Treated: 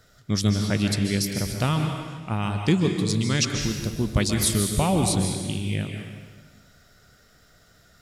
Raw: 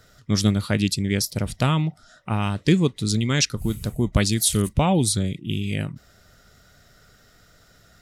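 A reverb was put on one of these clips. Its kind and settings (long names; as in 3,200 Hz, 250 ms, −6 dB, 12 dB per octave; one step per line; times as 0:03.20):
dense smooth reverb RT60 1.4 s, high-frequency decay 0.95×, pre-delay 120 ms, DRR 3.5 dB
level −3 dB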